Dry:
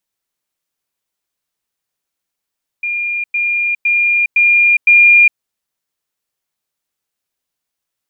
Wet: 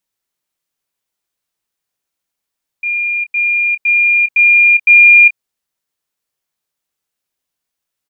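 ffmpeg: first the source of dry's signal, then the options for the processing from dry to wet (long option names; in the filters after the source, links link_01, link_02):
-f lavfi -i "aevalsrc='pow(10,(-16+3*floor(t/0.51))/20)*sin(2*PI*2410*t)*clip(min(mod(t,0.51),0.41-mod(t,0.51))/0.005,0,1)':duration=2.55:sample_rate=44100"
-filter_complex "[0:a]asplit=2[link_01][link_02];[link_02]adelay=27,volume=-11dB[link_03];[link_01][link_03]amix=inputs=2:normalize=0"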